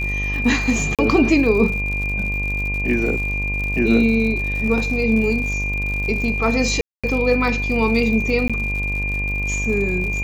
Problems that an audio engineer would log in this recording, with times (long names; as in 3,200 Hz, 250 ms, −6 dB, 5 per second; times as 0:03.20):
mains buzz 50 Hz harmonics 23 −25 dBFS
surface crackle 94 per second −27 dBFS
whistle 2,400 Hz −23 dBFS
0:00.95–0:00.99: drop-out 37 ms
0:06.81–0:07.04: drop-out 226 ms
0:08.48–0:08.50: drop-out 16 ms